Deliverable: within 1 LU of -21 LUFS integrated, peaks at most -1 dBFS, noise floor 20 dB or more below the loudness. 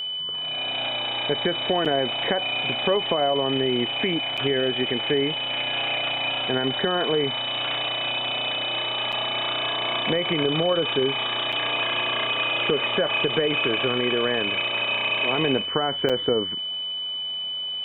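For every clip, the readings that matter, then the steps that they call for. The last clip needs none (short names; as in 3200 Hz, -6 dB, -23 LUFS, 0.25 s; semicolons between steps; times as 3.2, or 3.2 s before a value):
dropouts 5; longest dropout 6.3 ms; steady tone 3000 Hz; tone level -27 dBFS; loudness -23.0 LUFS; peak -7.5 dBFS; loudness target -21.0 LUFS
-> interpolate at 1.85/4.37/9.12/11.52/16.09, 6.3 ms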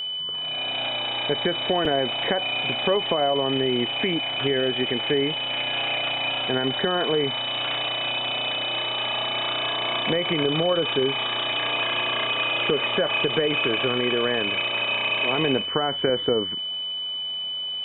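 dropouts 0; steady tone 3000 Hz; tone level -27 dBFS
-> notch 3000 Hz, Q 30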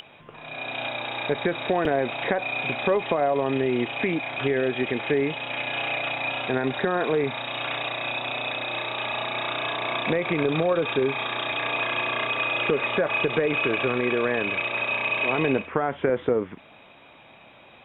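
steady tone none; loudness -25.0 LUFS; peak -7.5 dBFS; loudness target -21.0 LUFS
-> gain +4 dB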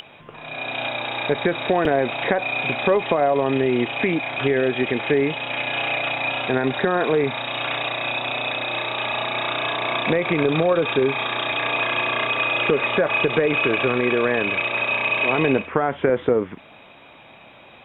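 loudness -21.0 LUFS; peak -3.5 dBFS; noise floor -47 dBFS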